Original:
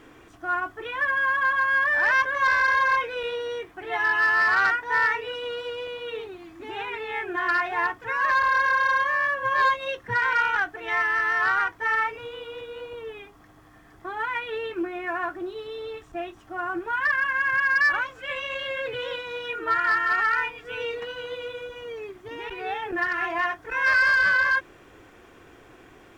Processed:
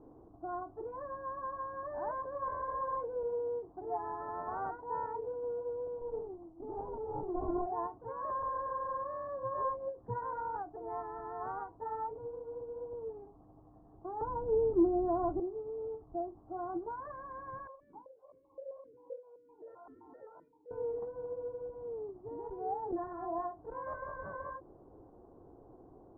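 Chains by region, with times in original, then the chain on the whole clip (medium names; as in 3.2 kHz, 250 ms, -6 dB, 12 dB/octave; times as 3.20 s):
6.01–7.66 s: expander -42 dBFS + sliding maximum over 17 samples
14.21–15.40 s: tilt EQ -3.5 dB/octave + waveshaping leveller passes 1 + steep low-pass 1.6 kHz
17.67–20.71 s: comb filter that takes the minimum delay 2.1 ms + stepped vowel filter 7.7 Hz
whole clip: steep low-pass 910 Hz 36 dB/octave; endings held to a fixed fall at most 200 dB/s; trim -4.5 dB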